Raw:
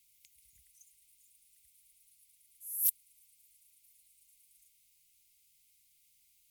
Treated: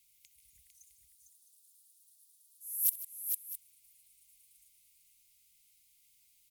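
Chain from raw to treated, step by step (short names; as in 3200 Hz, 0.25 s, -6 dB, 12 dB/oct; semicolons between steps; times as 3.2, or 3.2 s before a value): 0.67–2.67 inverse Chebyshev high-pass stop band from 860 Hz, stop band 70 dB; tapped delay 63/153/452/660 ms -18.5/-16/-5.5/-14.5 dB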